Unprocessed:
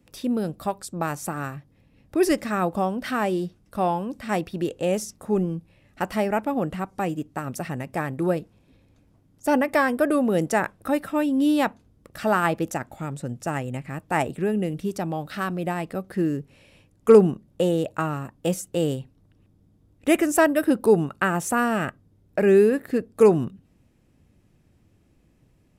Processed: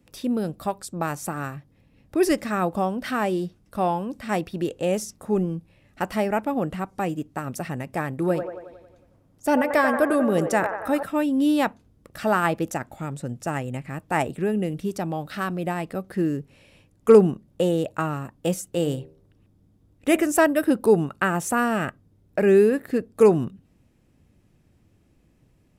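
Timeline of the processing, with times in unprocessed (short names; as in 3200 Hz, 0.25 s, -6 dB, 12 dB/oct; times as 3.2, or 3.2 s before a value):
8.19–11.03 band-limited delay 91 ms, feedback 58%, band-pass 870 Hz, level -5 dB
18.7–20.27 de-hum 78.82 Hz, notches 12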